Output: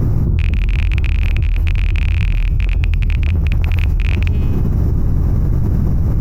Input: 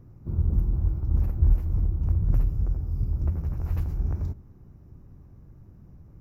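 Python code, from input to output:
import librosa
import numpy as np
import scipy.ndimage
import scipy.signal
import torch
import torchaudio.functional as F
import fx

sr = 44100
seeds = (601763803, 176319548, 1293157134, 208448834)

y = fx.rattle_buzz(x, sr, strikes_db=-22.0, level_db=-19.0)
y = fx.low_shelf(y, sr, hz=80.0, db=6.0)
y = fx.comb_fb(y, sr, f0_hz=210.0, decay_s=0.89, harmonics='all', damping=0.0, mix_pct=30)
y = fx.env_flatten(y, sr, amount_pct=100)
y = y * librosa.db_to_amplitude(-1.0)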